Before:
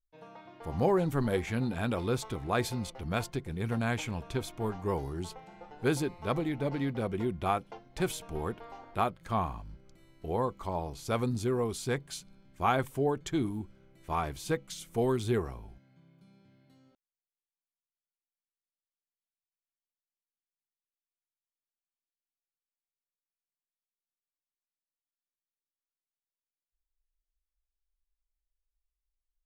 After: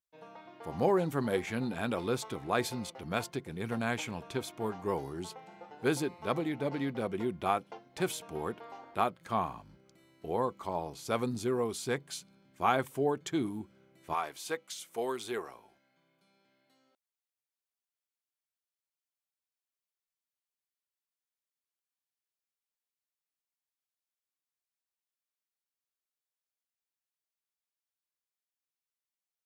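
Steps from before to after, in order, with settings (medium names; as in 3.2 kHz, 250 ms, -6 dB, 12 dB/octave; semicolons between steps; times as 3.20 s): Bessel high-pass 190 Hz, order 2, from 14.13 s 590 Hz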